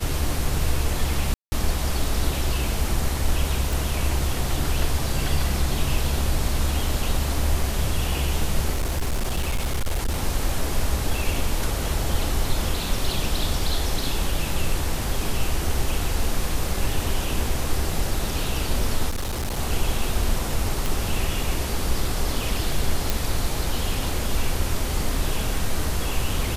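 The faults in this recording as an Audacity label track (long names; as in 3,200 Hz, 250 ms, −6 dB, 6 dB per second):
1.340000	1.520000	drop-out 180 ms
3.730000	3.730000	click
8.720000	10.210000	clipping −19.5 dBFS
19.090000	19.590000	clipping −23 dBFS
20.860000	20.860000	click
23.100000	23.100000	click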